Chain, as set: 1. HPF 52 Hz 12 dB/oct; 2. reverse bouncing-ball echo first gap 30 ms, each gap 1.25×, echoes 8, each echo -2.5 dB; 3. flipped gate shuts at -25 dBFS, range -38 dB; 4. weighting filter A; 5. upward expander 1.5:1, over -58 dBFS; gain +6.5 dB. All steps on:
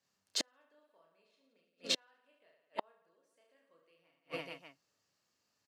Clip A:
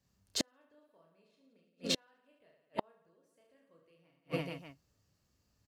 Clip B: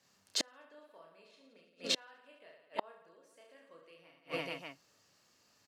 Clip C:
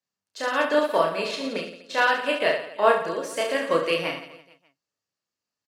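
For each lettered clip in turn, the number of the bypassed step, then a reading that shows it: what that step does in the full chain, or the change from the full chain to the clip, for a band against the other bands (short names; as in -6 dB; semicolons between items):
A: 4, 125 Hz band +14.0 dB; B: 5, momentary loudness spread change +10 LU; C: 3, momentary loudness spread change -3 LU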